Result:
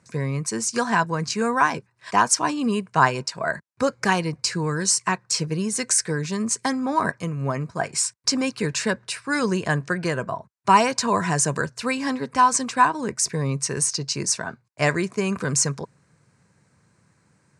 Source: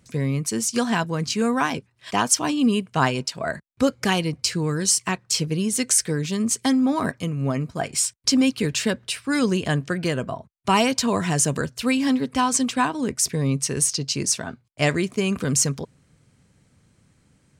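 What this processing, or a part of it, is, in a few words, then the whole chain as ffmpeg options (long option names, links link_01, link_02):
car door speaker: -af "highpass=110,equalizer=frequency=260:width_type=q:width=4:gain=-7,equalizer=frequency=1000:width_type=q:width=4:gain=7,equalizer=frequency=1600:width_type=q:width=4:gain=5,equalizer=frequency=3200:width_type=q:width=4:gain=-10,lowpass=frequency=9500:width=0.5412,lowpass=frequency=9500:width=1.3066"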